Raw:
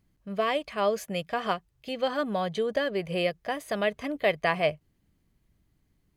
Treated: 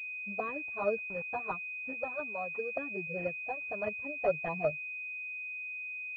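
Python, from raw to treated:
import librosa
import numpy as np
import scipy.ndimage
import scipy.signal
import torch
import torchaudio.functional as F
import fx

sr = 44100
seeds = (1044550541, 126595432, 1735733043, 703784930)

y = fx.bin_expand(x, sr, power=1.5)
y = fx.low_shelf(y, sr, hz=340.0, db=-10.0, at=(1.93, 2.77))
y = fx.highpass(y, sr, hz=170.0, slope=6)
y = fx.air_absorb(y, sr, metres=120.0)
y = fx.env_flanger(y, sr, rest_ms=5.7, full_db=-23.0)
y = fx.comb(y, sr, ms=7.1, depth=0.59, at=(3.98, 4.44))
y = fx.env_lowpass_down(y, sr, base_hz=670.0, full_db=-20.5)
y = fx.quant_dither(y, sr, seeds[0], bits=8, dither='none', at=(0.99, 1.39), fade=0.02)
y = fx.pwm(y, sr, carrier_hz=2500.0)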